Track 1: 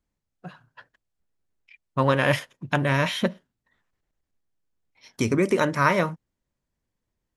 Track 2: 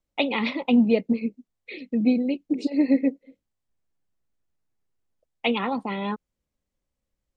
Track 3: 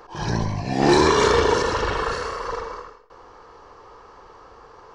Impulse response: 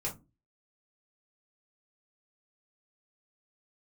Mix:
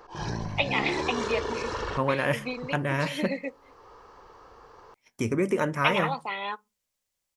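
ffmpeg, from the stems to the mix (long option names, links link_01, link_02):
-filter_complex "[0:a]agate=range=-11dB:threshold=-49dB:ratio=16:detection=peak,equalizer=frequency=4200:width=3.2:gain=-13.5,volume=-5dB,asplit=3[link_01][link_02][link_03];[link_02]volume=-17.5dB[link_04];[1:a]highpass=700,acrossover=split=2900[link_05][link_06];[link_06]acompressor=threshold=-50dB:ratio=4:attack=1:release=60[link_07];[link_05][link_07]amix=inputs=2:normalize=0,highshelf=frequency=3100:gain=10,adelay=400,volume=0dB,asplit=2[link_08][link_09];[link_09]volume=-22.5dB[link_10];[2:a]acompressor=threshold=-23dB:ratio=6,volume=-5dB[link_11];[link_03]apad=whole_len=217944[link_12];[link_11][link_12]sidechaincompress=threshold=-39dB:ratio=8:attack=16:release=529[link_13];[3:a]atrim=start_sample=2205[link_14];[link_04][link_10]amix=inputs=2:normalize=0[link_15];[link_15][link_14]afir=irnorm=-1:irlink=0[link_16];[link_01][link_08][link_13][link_16]amix=inputs=4:normalize=0"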